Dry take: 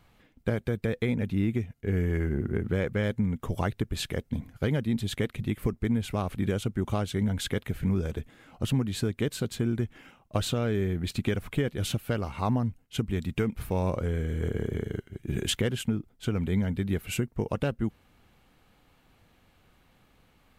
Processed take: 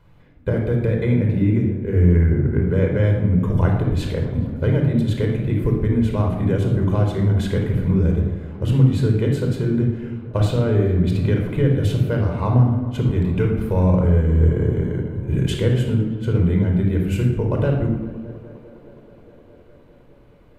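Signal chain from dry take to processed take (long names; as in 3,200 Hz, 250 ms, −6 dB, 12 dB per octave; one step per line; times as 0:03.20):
high-shelf EQ 2,300 Hz −11.5 dB
tape delay 207 ms, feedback 90%, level −18 dB, low-pass 3,400 Hz
rectangular room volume 3,500 cubic metres, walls furnished, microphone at 4.9 metres
level +3.5 dB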